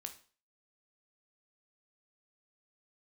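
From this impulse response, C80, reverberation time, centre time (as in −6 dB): 17.5 dB, 0.40 s, 9 ms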